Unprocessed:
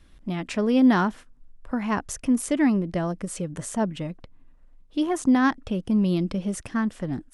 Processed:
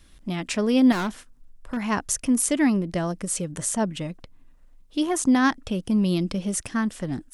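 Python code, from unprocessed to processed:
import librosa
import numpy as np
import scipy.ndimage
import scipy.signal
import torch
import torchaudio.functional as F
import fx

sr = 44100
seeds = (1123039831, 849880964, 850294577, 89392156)

y = fx.high_shelf(x, sr, hz=3600.0, db=10.5)
y = fx.overload_stage(y, sr, gain_db=24.0, at=(0.92, 1.77))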